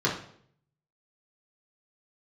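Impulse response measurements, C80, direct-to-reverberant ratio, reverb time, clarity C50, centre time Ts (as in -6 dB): 11.0 dB, -5.0 dB, 0.60 s, 7.0 dB, 27 ms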